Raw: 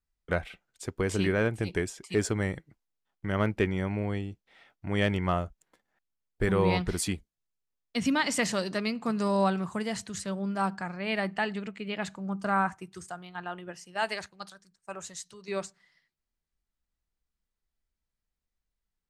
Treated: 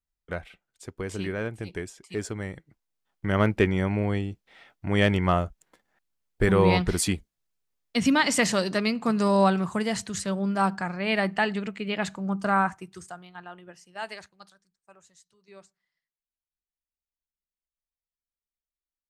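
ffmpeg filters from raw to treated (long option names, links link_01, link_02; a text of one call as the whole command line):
ffmpeg -i in.wav -af "volume=5dB,afade=type=in:start_time=2.51:duration=0.79:silence=0.334965,afade=type=out:start_time=12.31:duration=1.17:silence=0.298538,afade=type=out:start_time=14.12:duration=0.9:silence=0.281838" out.wav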